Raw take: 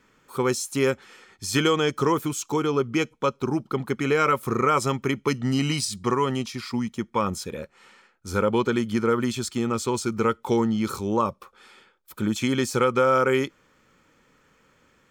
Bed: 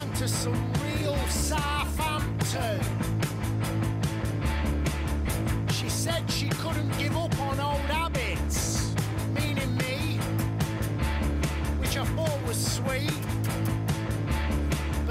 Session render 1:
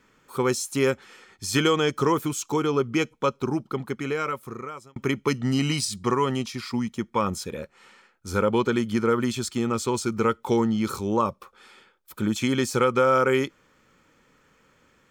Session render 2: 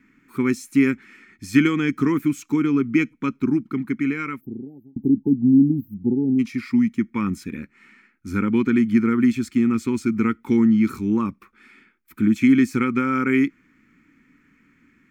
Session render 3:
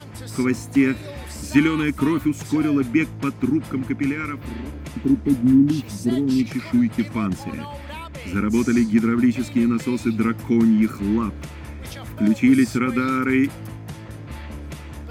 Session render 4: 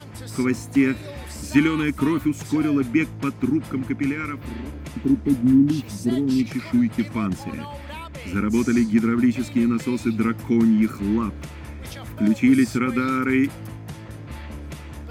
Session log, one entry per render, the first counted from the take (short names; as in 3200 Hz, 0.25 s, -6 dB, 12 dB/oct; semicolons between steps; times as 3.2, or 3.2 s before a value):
3.36–4.96 fade out
4.41–6.39 spectral delete 870–12000 Hz; EQ curve 130 Hz 0 dB, 280 Hz +12 dB, 560 Hz -20 dB, 2200 Hz +7 dB, 3200 Hz -9 dB, 8700 Hz -9 dB, 14000 Hz -5 dB
add bed -7 dB
gain -1 dB